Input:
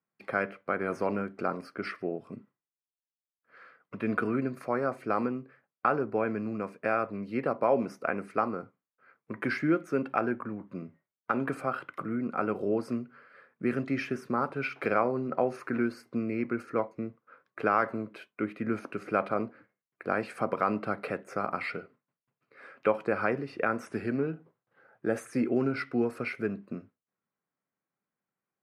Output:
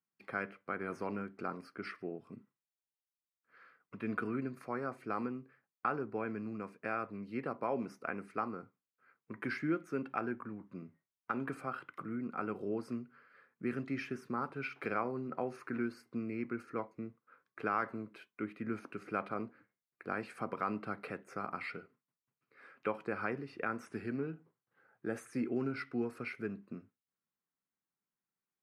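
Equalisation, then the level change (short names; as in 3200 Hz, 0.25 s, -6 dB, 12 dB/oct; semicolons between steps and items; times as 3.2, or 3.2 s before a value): bell 590 Hz -6.5 dB 0.57 oct; -7.0 dB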